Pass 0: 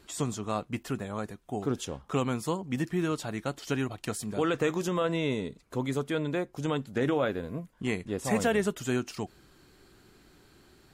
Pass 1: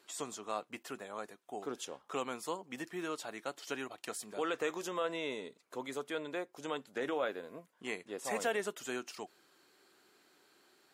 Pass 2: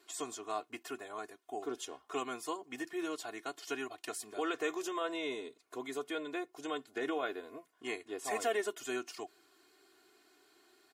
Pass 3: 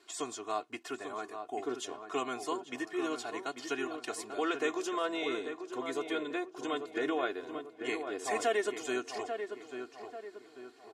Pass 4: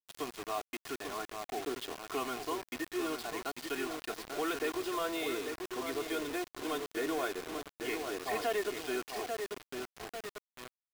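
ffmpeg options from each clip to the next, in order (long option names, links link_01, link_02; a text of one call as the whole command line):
ffmpeg -i in.wav -af "highpass=430,volume=-5dB" out.wav
ffmpeg -i in.wav -af "aecho=1:1:2.8:0.95,volume=-2.5dB" out.wav
ffmpeg -i in.wav -filter_complex "[0:a]lowpass=8400,asplit=2[link_01][link_02];[link_02]adelay=841,lowpass=frequency=1900:poles=1,volume=-7dB,asplit=2[link_03][link_04];[link_04]adelay=841,lowpass=frequency=1900:poles=1,volume=0.45,asplit=2[link_05][link_06];[link_06]adelay=841,lowpass=frequency=1900:poles=1,volume=0.45,asplit=2[link_07][link_08];[link_08]adelay=841,lowpass=frequency=1900:poles=1,volume=0.45,asplit=2[link_09][link_10];[link_10]adelay=841,lowpass=frequency=1900:poles=1,volume=0.45[link_11];[link_01][link_03][link_05][link_07][link_09][link_11]amix=inputs=6:normalize=0,volume=3dB" out.wav
ffmpeg -i in.wav -af "aresample=11025,asoftclip=type=tanh:threshold=-26.5dB,aresample=44100,acrusher=bits=6:mix=0:aa=0.000001" out.wav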